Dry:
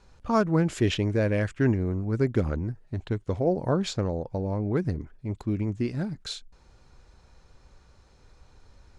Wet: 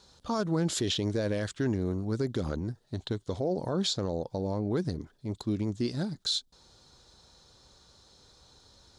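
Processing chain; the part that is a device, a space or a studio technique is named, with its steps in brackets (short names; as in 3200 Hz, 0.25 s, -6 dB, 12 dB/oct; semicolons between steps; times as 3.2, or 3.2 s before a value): HPF 150 Hz 6 dB/oct; over-bright horn tweeter (resonant high shelf 3000 Hz +6.5 dB, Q 3; limiter -20.5 dBFS, peak gain reduction 9.5 dB)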